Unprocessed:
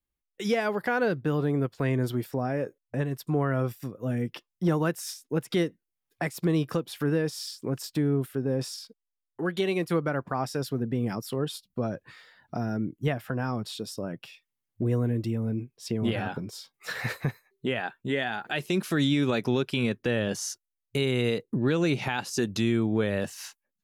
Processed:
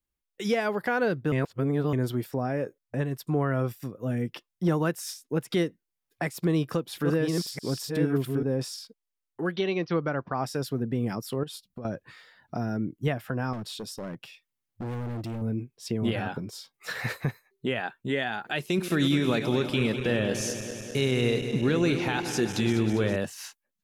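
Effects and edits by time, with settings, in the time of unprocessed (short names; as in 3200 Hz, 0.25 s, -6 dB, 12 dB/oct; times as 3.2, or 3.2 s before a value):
1.32–1.93 reverse
6.26–8.43 reverse delay 0.665 s, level -3.5 dB
9.56–10.42 Chebyshev low-pass 6200 Hz, order 10
11.43–11.85 compressor 4:1, threshold -36 dBFS
13.53–15.42 hard clip -31.5 dBFS
18.59–23.16 regenerating reverse delay 0.101 s, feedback 83%, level -10 dB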